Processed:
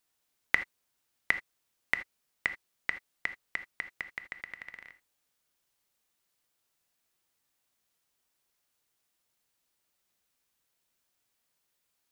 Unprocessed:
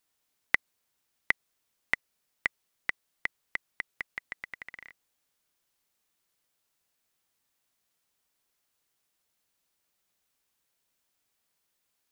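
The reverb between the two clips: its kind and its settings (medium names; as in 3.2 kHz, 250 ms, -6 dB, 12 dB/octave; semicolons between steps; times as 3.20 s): gated-style reverb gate 100 ms flat, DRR 9.5 dB; trim -1 dB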